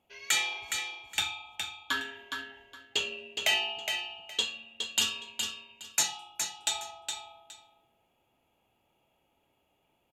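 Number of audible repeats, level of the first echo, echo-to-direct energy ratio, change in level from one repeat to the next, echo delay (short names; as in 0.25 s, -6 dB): 2, -6.0 dB, -6.0 dB, -13.5 dB, 0.415 s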